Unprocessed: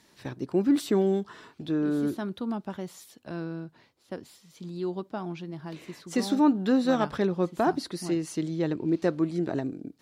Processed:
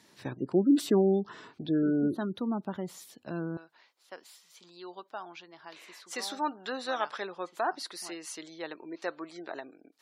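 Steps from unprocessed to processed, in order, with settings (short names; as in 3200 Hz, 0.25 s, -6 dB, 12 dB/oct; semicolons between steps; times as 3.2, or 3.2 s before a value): HPF 97 Hz 12 dB/oct, from 3.57 s 810 Hz; spectral gate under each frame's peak -30 dB strong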